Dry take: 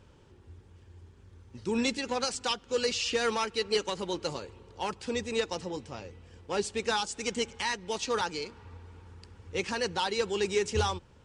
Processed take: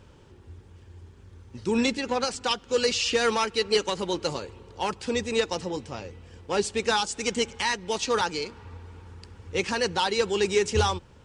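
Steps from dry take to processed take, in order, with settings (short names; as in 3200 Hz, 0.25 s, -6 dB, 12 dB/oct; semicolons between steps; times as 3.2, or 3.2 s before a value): 1.86–2.51 high shelf 3900 Hz -6.5 dB; gain +5 dB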